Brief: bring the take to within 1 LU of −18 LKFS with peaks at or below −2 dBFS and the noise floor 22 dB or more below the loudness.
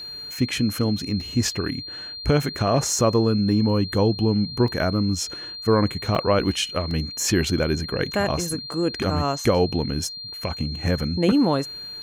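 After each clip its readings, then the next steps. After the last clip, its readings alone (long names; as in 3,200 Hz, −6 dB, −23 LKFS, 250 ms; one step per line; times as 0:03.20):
number of dropouts 4; longest dropout 2.0 ms; interfering tone 4,200 Hz; level of the tone −33 dBFS; integrated loudness −23.0 LKFS; sample peak −7.0 dBFS; target loudness −18.0 LKFS
→ repair the gap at 0:01.21/0:04.68/0:06.15/0:06.91, 2 ms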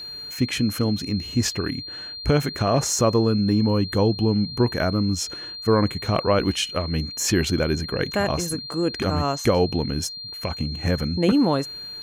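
number of dropouts 0; interfering tone 4,200 Hz; level of the tone −33 dBFS
→ notch filter 4,200 Hz, Q 30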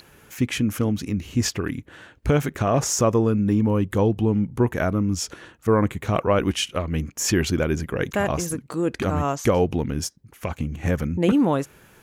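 interfering tone none found; integrated loudness −23.0 LKFS; sample peak −7.5 dBFS; target loudness −18.0 LKFS
→ level +5 dB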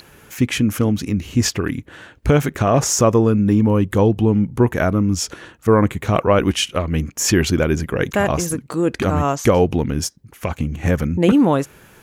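integrated loudness −18.0 LKFS; sample peak −2.5 dBFS; background noise floor −49 dBFS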